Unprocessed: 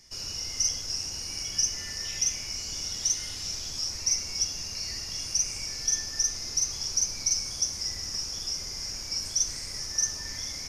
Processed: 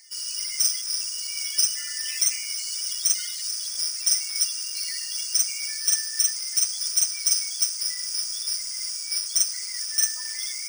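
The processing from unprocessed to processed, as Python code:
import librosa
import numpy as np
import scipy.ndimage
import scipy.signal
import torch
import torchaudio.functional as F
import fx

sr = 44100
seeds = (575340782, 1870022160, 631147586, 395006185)

y = fx.spec_quant(x, sr, step_db=30)
y = np.repeat(y[::3], 3)[:len(y)]
y = scipy.signal.sosfilt(scipy.signal.butter(4, 1000.0, 'highpass', fs=sr, output='sos'), y)
y = y * librosa.db_to_amplitude(5.5)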